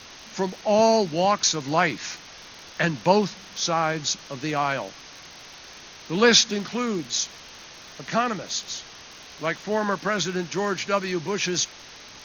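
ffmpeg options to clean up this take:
ffmpeg -i in.wav -af "adeclick=threshold=4,afwtdn=0.011" out.wav

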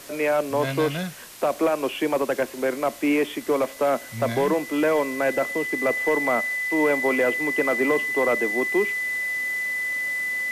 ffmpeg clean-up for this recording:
ffmpeg -i in.wav -af "adeclick=threshold=4,bandreject=frequency=2000:width=30,afwtdn=0.0079" out.wav

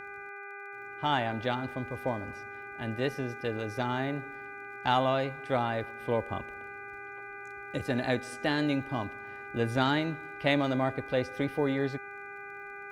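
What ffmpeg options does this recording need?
ffmpeg -i in.wav -af "adeclick=threshold=4,bandreject=frequency=401.3:width_type=h:width=4,bandreject=frequency=802.6:width_type=h:width=4,bandreject=frequency=1203.9:width_type=h:width=4,bandreject=frequency=1605.2:width_type=h:width=4,bandreject=frequency=2006.5:width_type=h:width=4,bandreject=frequency=2407.8:width_type=h:width=4,bandreject=frequency=1500:width=30" out.wav

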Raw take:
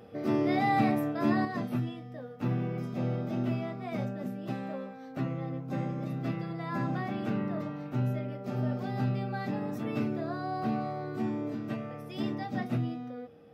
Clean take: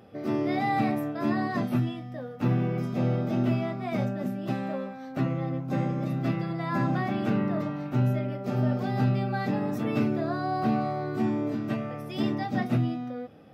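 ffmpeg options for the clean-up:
ffmpeg -i in.wav -af "bandreject=frequency=470:width=30,asetnsamples=nb_out_samples=441:pad=0,asendcmd='1.45 volume volume 5.5dB',volume=0dB" out.wav

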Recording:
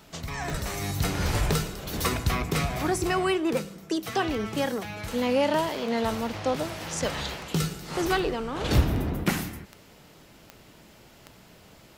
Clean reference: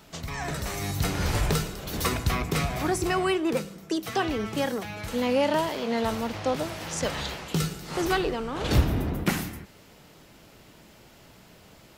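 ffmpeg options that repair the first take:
ffmpeg -i in.wav -filter_complex "[0:a]adeclick=threshold=4,asplit=3[link_01][link_02][link_03];[link_01]afade=type=out:start_time=0.51:duration=0.02[link_04];[link_02]highpass=frequency=140:width=0.5412,highpass=frequency=140:width=1.3066,afade=type=in:start_time=0.51:duration=0.02,afade=type=out:start_time=0.63:duration=0.02[link_05];[link_03]afade=type=in:start_time=0.63:duration=0.02[link_06];[link_04][link_05][link_06]amix=inputs=3:normalize=0" out.wav

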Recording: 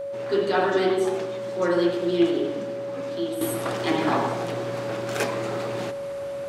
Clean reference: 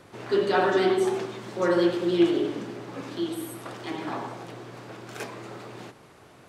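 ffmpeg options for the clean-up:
ffmpeg -i in.wav -af "bandreject=frequency=560:width=30,asetnsamples=nb_out_samples=441:pad=0,asendcmd='3.41 volume volume -9.5dB',volume=0dB" out.wav

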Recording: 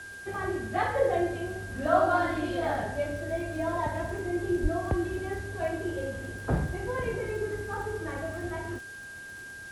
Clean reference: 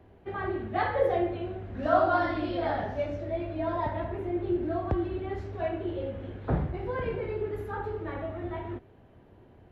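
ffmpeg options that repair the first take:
ffmpeg -i in.wav -filter_complex "[0:a]adeclick=threshold=4,bandreject=frequency=1600:width=30,asplit=3[link_01][link_02][link_03];[link_01]afade=type=out:start_time=4.62:duration=0.02[link_04];[link_02]highpass=frequency=140:width=0.5412,highpass=frequency=140:width=1.3066,afade=type=in:start_time=4.62:duration=0.02,afade=type=out:start_time=4.74:duration=0.02[link_05];[link_03]afade=type=in:start_time=4.74:duration=0.02[link_06];[link_04][link_05][link_06]amix=inputs=3:normalize=0,afwtdn=0.0025" out.wav

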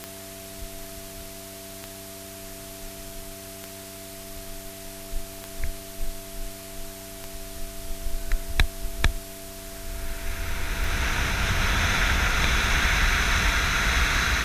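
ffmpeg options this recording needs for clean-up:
ffmpeg -i in.wav -af "adeclick=threshold=4,bandreject=frequency=97.4:width_type=h:width=4,bandreject=frequency=194.8:width_type=h:width=4,bandreject=frequency=292.2:width_type=h:width=4,bandreject=frequency=389.6:width_type=h:width=4,bandreject=frequency=670:width=30,afftdn=noise_reduction=30:noise_floor=-40" out.wav

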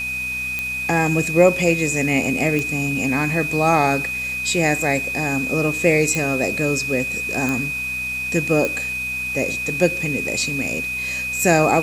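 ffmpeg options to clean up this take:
ffmpeg -i in.wav -af "adeclick=threshold=4,bandreject=frequency=63.1:width_type=h:width=4,bandreject=frequency=126.2:width_type=h:width=4,bandreject=frequency=189.3:width_type=h:width=4,bandreject=frequency=252.4:width_type=h:width=4,bandreject=frequency=2500:width=30,afwtdn=0.011" out.wav

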